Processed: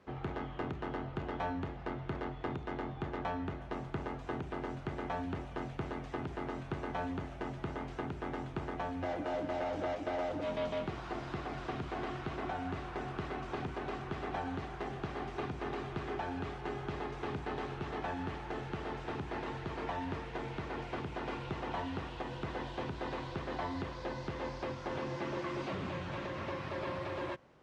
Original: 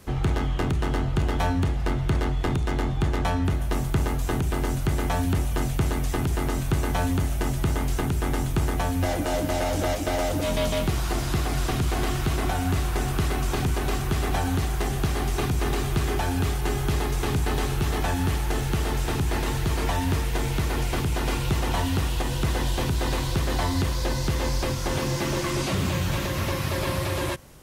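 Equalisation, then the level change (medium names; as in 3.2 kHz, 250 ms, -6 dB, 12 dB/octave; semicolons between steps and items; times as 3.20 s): high-pass 460 Hz 6 dB/octave; tape spacing loss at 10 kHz 35 dB; -4.5 dB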